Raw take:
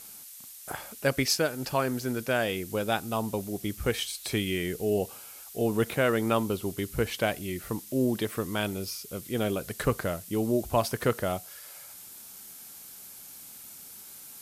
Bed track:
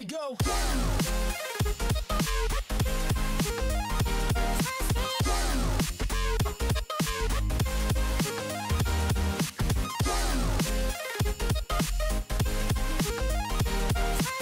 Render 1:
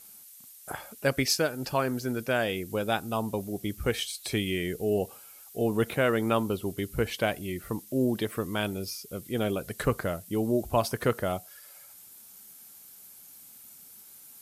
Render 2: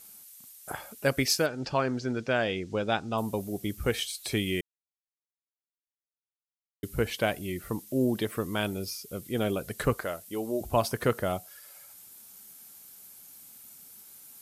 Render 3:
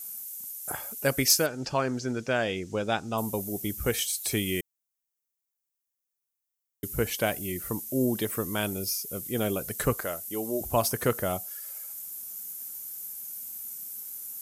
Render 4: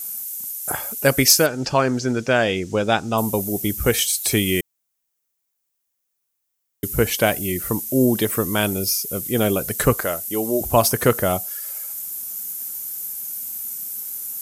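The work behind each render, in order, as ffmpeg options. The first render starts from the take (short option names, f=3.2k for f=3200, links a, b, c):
-af "afftdn=nr=7:nf=-47"
-filter_complex "[0:a]asettb=1/sr,asplit=3[a][b][c];[a]atrim=end=1.464[d];[b]atrim=start=1.46:end=3.18,asetpts=PTS-STARTPTS,afade=t=in:d=0.004:c=qsin,afade=t=out:st=1.716:d=0.004:c=qsin,lowpass=f=6.3k:w=0.5412,lowpass=f=6.3k:w=1.3066[e];[c]atrim=start=3.176[f];[d][e]acrossfade=d=0.004:c1=hsin:c2=qsin[g];[g][f]acrossfade=d=0.004:c1=qsin:c2=hsin,asettb=1/sr,asplit=3[h][i][j];[h]atrim=end=9.944[k];[i]atrim=start=9.94:end=10.61,asetpts=PTS-STARTPTS,afade=t=in:d=0.004:c=qsin,afade=t=out:st=0.666:d=0.004:c=qsin,equalizer=f=120:w=0.59:g=-13.5[l];[j]atrim=start=10.606[m];[k][l]acrossfade=d=0.004:c1=hsin:c2=qsin[n];[n][m]acrossfade=d=0.004:c1=qsin:c2=hsin,asplit=3[o][p][q];[o]atrim=end=4.61,asetpts=PTS-STARTPTS,afade=t=out:st=4.606:d=0.004:c=hsin[r];[p]atrim=start=4.61:end=6.83,asetpts=PTS-STARTPTS,volume=0[s];[q]atrim=start=6.83,asetpts=PTS-STARTPTS,afade=t=in:d=0.004:c=hsin[t];[r][s][t]concat=n=3:v=0:a=1"
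-af "aexciter=amount=1.9:drive=8.3:freq=5.7k"
-af "volume=9dB,alimiter=limit=-2dB:level=0:latency=1"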